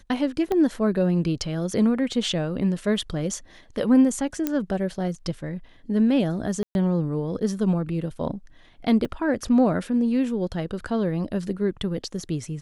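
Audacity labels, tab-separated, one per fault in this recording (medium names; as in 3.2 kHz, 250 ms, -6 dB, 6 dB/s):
0.520000	0.520000	pop -14 dBFS
4.470000	4.470000	pop -10 dBFS
6.630000	6.750000	dropout 121 ms
9.050000	9.050000	dropout 2.7 ms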